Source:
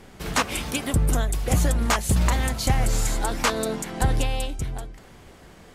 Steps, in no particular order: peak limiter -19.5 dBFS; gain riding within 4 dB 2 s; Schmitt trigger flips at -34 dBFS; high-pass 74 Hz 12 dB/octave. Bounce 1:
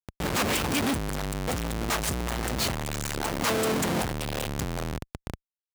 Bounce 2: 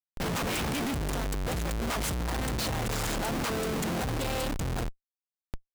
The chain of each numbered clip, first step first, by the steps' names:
gain riding > Schmitt trigger > high-pass > peak limiter; high-pass > peak limiter > gain riding > Schmitt trigger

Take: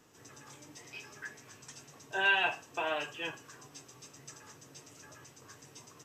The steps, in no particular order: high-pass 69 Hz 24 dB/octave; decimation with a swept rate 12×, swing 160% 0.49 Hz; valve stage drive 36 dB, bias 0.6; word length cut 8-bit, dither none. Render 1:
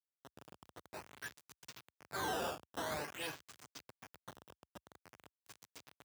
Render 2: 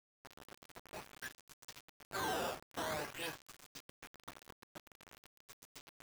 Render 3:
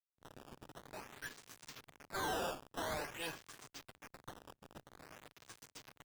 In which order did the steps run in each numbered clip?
decimation with a swept rate > valve stage > word length cut > high-pass; decimation with a swept rate > valve stage > high-pass > word length cut; word length cut > high-pass > decimation with a swept rate > valve stage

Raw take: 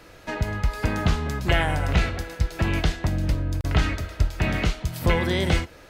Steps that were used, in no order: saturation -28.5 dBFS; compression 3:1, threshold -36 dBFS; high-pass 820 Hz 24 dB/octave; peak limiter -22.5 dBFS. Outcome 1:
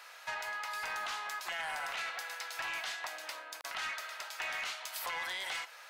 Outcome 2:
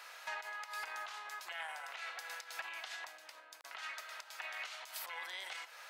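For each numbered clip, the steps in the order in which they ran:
high-pass > peak limiter > saturation > compression; peak limiter > compression > high-pass > saturation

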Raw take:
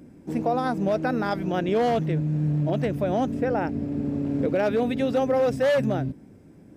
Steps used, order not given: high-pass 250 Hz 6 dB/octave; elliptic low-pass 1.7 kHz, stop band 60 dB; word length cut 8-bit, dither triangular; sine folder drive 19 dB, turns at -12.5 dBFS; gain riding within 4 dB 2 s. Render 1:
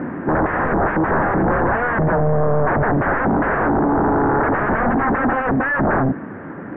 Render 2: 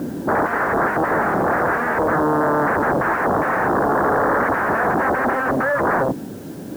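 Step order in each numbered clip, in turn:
word length cut > gain riding > high-pass > sine folder > elliptic low-pass; gain riding > sine folder > elliptic low-pass > word length cut > high-pass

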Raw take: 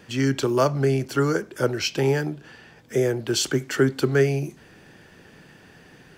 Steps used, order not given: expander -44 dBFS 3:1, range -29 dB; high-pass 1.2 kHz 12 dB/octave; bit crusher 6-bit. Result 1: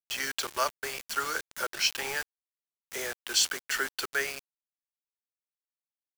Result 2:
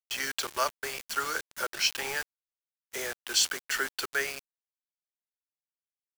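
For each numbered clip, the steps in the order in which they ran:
expander > high-pass > bit crusher; high-pass > bit crusher > expander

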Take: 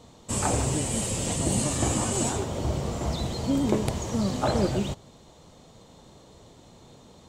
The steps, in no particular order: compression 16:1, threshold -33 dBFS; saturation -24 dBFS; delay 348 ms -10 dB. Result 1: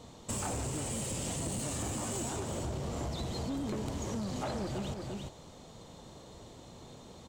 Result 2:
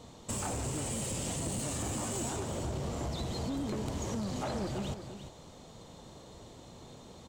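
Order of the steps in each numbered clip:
saturation > delay > compression; saturation > compression > delay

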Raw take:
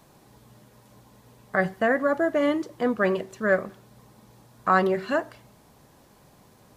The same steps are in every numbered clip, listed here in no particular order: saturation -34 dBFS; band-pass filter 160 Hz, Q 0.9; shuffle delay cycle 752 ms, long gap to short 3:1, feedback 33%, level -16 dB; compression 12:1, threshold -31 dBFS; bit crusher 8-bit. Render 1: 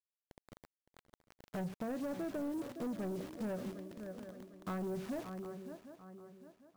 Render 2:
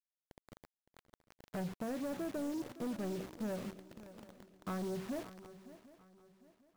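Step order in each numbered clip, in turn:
band-pass filter > bit crusher > shuffle delay > compression > saturation; band-pass filter > compression > bit crusher > saturation > shuffle delay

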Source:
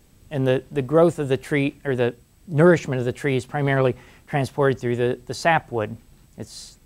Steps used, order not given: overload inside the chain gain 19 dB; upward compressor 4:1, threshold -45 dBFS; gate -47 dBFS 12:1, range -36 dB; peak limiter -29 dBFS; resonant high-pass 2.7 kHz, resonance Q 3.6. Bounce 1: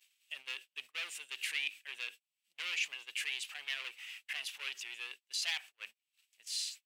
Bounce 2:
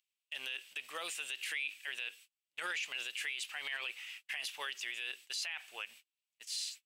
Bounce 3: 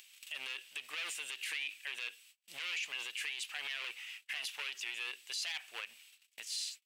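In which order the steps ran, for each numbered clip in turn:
overload inside the chain > peak limiter > resonant high-pass > upward compressor > gate; upward compressor > resonant high-pass > gate > peak limiter > overload inside the chain; gate > overload inside the chain > resonant high-pass > upward compressor > peak limiter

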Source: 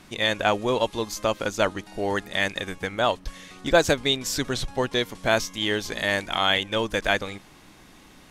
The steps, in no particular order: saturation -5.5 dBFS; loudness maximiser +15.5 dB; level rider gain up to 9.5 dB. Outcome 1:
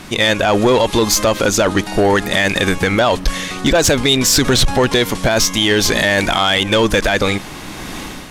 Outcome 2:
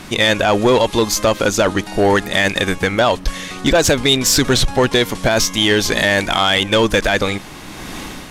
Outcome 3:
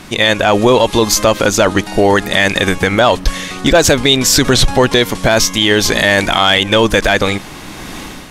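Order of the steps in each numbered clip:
level rider > loudness maximiser > saturation; loudness maximiser > level rider > saturation; level rider > saturation > loudness maximiser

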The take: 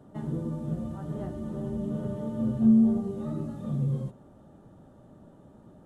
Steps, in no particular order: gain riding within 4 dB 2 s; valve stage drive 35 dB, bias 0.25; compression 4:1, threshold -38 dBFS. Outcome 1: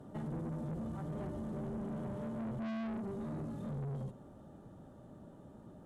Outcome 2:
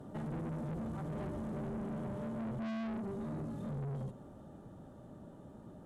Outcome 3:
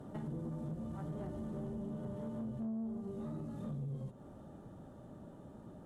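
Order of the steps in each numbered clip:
valve stage > gain riding > compression; gain riding > valve stage > compression; gain riding > compression > valve stage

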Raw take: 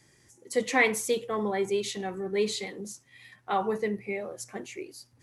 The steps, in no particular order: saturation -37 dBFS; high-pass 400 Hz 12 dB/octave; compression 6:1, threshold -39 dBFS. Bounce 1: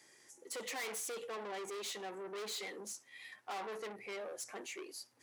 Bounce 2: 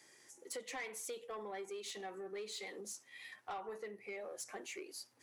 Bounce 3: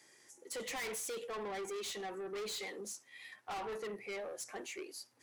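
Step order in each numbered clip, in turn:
saturation > compression > high-pass; compression > high-pass > saturation; high-pass > saturation > compression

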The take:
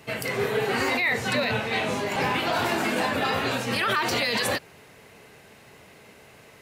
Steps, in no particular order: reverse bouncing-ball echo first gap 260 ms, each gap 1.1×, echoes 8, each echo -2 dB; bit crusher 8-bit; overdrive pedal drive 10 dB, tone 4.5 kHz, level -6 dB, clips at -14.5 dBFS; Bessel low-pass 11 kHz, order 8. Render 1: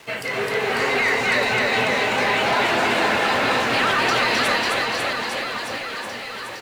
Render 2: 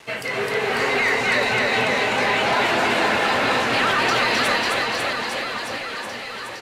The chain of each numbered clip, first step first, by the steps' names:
Bessel low-pass > bit crusher > overdrive pedal > reverse bouncing-ball echo; bit crusher > Bessel low-pass > overdrive pedal > reverse bouncing-ball echo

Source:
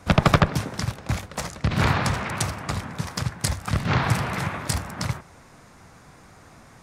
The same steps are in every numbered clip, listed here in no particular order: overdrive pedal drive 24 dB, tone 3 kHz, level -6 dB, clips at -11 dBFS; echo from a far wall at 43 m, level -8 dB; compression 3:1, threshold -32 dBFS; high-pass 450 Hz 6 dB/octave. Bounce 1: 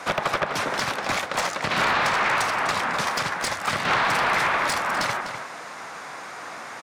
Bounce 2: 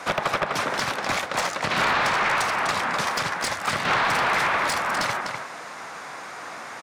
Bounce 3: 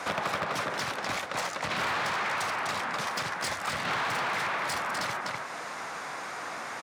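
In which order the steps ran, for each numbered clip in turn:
high-pass > compression > overdrive pedal > echo from a far wall; high-pass > compression > echo from a far wall > overdrive pedal; echo from a far wall > overdrive pedal > high-pass > compression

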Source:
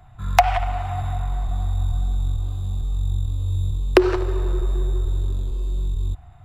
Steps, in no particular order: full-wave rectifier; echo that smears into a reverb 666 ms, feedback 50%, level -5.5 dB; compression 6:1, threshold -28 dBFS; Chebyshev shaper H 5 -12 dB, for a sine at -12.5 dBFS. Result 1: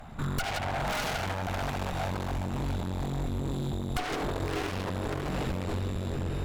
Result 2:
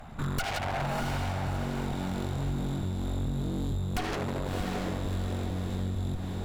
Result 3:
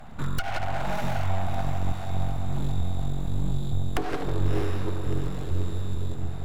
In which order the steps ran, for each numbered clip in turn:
echo that smears into a reverb > full-wave rectifier > Chebyshev shaper > compression; full-wave rectifier > Chebyshev shaper > echo that smears into a reverb > compression; compression > Chebyshev shaper > echo that smears into a reverb > full-wave rectifier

